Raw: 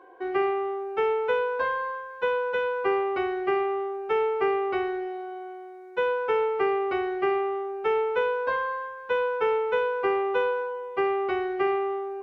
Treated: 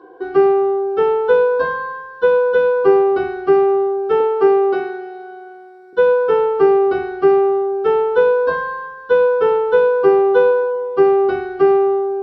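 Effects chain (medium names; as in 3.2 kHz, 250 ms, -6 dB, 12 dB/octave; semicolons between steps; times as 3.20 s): 4.20–5.93 s: high-pass 210 Hz 12 dB/octave; reverberation RT60 0.20 s, pre-delay 3 ms, DRR 1 dB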